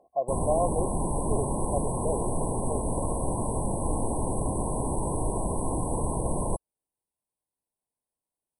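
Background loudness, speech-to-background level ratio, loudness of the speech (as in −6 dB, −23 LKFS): −30.0 LKFS, −3.5 dB, −33.5 LKFS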